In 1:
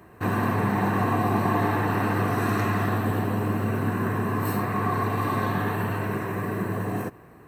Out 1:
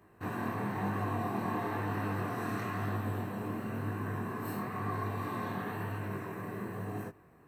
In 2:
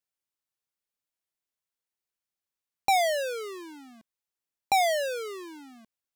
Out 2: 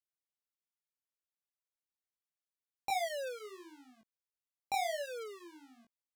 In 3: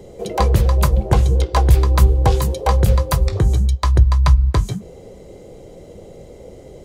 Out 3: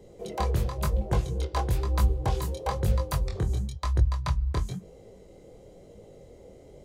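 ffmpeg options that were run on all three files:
-af "flanger=delay=19:depth=7.2:speed=1,volume=0.398"

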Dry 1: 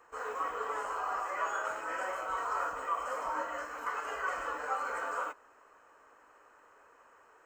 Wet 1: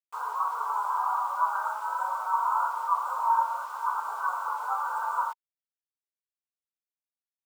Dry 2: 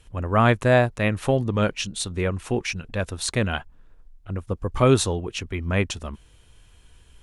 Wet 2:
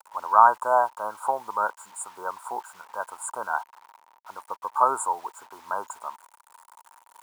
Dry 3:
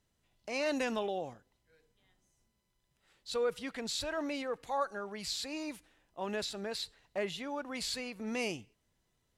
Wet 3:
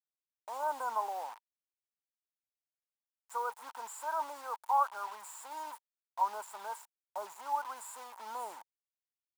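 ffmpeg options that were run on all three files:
-af "afftfilt=real='re*(1-between(b*sr/4096,1600,6800))':imag='im*(1-between(b*sr/4096,1600,6800))':win_size=4096:overlap=0.75,acrusher=bits=7:mix=0:aa=0.000001,highpass=f=930:t=q:w=9,volume=0.668"

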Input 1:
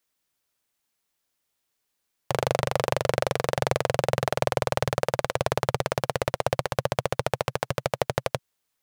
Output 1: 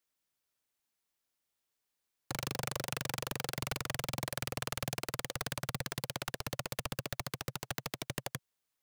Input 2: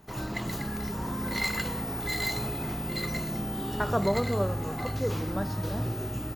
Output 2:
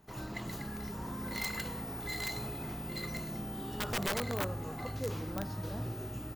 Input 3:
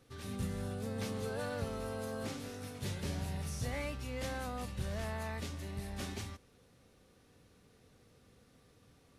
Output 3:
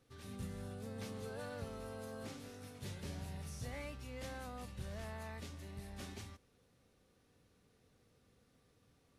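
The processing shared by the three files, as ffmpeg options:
-af "aeval=exprs='(mod(8.91*val(0)+1,2)-1)/8.91':c=same,volume=0.447"

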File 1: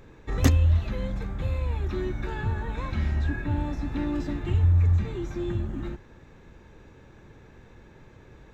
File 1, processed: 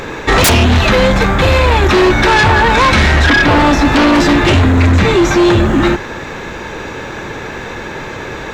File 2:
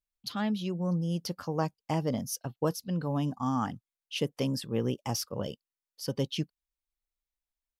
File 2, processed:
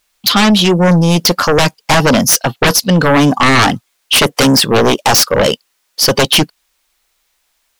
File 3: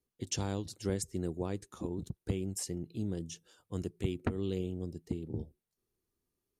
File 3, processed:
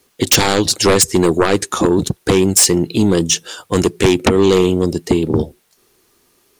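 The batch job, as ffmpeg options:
-filter_complex "[0:a]asplit=2[s0][s1];[s1]highpass=f=720:p=1,volume=7.08,asoftclip=type=tanh:threshold=0.531[s2];[s0][s2]amix=inputs=2:normalize=0,lowpass=f=8000:p=1,volume=0.501,aeval=exprs='0.531*sin(PI/2*7.94*val(0)/0.531)':c=same"

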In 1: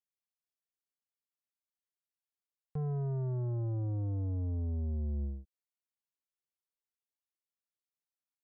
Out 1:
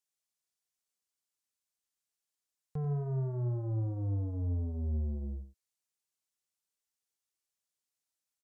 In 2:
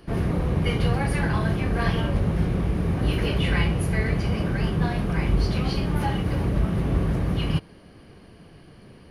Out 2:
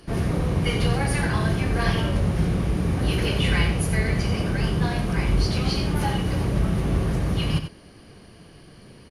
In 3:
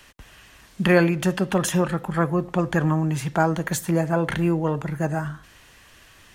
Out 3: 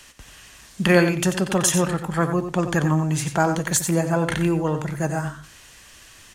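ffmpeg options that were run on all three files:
-af "equalizer=f=7300:t=o:w=1.7:g=9,aecho=1:1:90:0.355"

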